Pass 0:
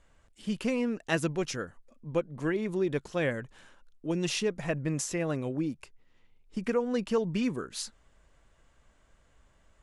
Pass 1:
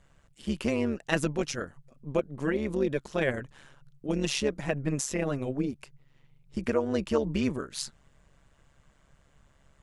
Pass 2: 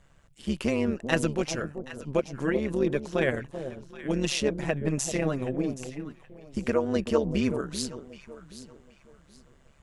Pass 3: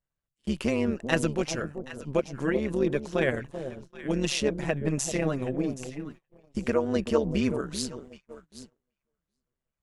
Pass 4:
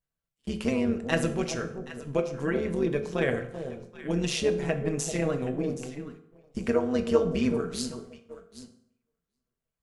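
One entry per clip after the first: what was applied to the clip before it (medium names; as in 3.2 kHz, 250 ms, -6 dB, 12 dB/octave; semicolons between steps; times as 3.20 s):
AM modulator 140 Hz, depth 60%; trim +4.5 dB
echo whose repeats swap between lows and highs 387 ms, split 880 Hz, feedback 52%, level -9 dB; trim +1.5 dB
gate -44 dBFS, range -29 dB
reverberation RT60 0.70 s, pre-delay 3 ms, DRR 6 dB; trim -2 dB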